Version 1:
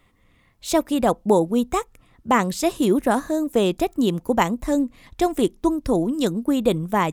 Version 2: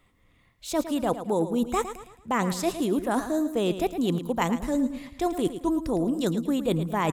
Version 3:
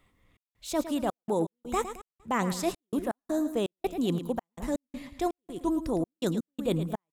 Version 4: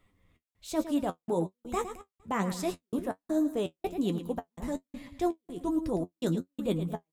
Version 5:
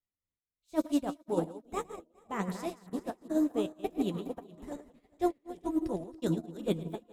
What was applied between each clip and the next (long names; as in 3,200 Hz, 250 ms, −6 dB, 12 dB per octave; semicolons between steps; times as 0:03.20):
noise reduction from a noise print of the clip's start 8 dB; reversed playback; downward compressor 6 to 1, threshold −27 dBFS, peak gain reduction 14.5 dB; reversed playback; repeating echo 110 ms, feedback 40%, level −11 dB; level +4 dB
gate pattern "xx.xxx.x." 82 BPM −60 dB; level −2.5 dB
low-shelf EQ 470 Hz +4 dB; flanger 1.2 Hz, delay 9.2 ms, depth 3.6 ms, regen +43%
feedback delay that plays each chunk backwards 207 ms, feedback 52%, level −6.5 dB; echo through a band-pass that steps 600 ms, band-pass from 370 Hz, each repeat 0.7 octaves, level −9.5 dB; expander for the loud parts 2.5 to 1, over −46 dBFS; level +1.5 dB